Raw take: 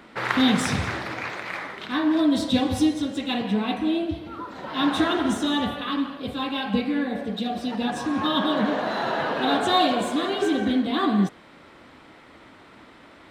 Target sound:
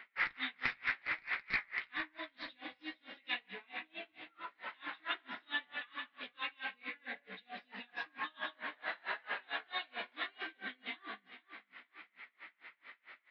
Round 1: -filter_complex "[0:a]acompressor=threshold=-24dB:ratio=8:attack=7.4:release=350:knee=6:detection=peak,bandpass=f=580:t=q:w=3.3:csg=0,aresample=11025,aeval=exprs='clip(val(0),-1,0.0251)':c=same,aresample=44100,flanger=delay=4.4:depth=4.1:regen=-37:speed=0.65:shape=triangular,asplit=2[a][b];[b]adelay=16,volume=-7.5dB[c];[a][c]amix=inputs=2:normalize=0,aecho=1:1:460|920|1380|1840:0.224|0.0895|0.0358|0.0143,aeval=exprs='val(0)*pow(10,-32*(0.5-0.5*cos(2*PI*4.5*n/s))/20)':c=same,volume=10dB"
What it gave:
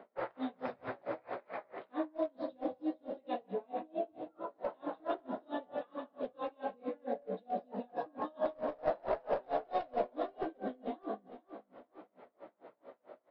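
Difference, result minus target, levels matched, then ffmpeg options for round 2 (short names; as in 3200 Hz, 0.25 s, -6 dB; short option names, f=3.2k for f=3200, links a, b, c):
500 Hz band +16.5 dB
-filter_complex "[0:a]acompressor=threshold=-24dB:ratio=8:attack=7.4:release=350:knee=6:detection=peak,bandpass=f=2.1k:t=q:w=3.3:csg=0,aresample=11025,aeval=exprs='clip(val(0),-1,0.0251)':c=same,aresample=44100,flanger=delay=4.4:depth=4.1:regen=-37:speed=0.65:shape=triangular,asplit=2[a][b];[b]adelay=16,volume=-7.5dB[c];[a][c]amix=inputs=2:normalize=0,aecho=1:1:460|920|1380|1840:0.224|0.0895|0.0358|0.0143,aeval=exprs='val(0)*pow(10,-32*(0.5-0.5*cos(2*PI*4.5*n/s))/20)':c=same,volume=10dB"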